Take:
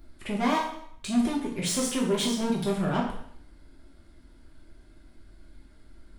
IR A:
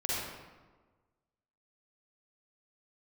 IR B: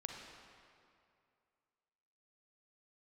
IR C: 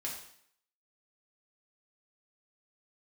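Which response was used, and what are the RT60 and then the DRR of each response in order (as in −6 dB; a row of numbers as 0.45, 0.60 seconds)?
C; 1.4, 2.4, 0.65 seconds; −7.5, 1.0, −4.0 decibels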